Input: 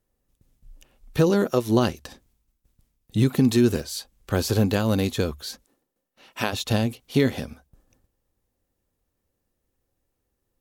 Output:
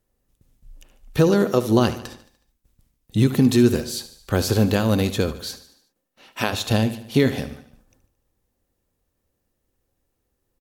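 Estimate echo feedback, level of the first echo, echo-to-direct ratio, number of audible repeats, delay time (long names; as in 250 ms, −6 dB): 54%, −14.0 dB, −12.5 dB, 4, 74 ms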